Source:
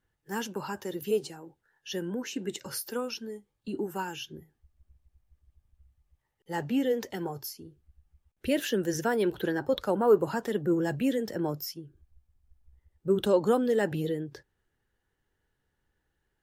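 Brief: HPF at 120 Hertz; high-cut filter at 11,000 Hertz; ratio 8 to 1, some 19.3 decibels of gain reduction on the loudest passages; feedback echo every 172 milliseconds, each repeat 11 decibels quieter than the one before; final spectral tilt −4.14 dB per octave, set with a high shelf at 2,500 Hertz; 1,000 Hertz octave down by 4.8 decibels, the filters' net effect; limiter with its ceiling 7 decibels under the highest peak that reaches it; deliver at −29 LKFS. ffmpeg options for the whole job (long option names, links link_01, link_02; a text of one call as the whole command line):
ffmpeg -i in.wav -af "highpass=120,lowpass=11000,equalizer=frequency=1000:width_type=o:gain=-7.5,highshelf=frequency=2500:gain=6,acompressor=threshold=-38dB:ratio=8,alimiter=level_in=9dB:limit=-24dB:level=0:latency=1,volume=-9dB,aecho=1:1:172|344|516:0.282|0.0789|0.0221,volume=14.5dB" out.wav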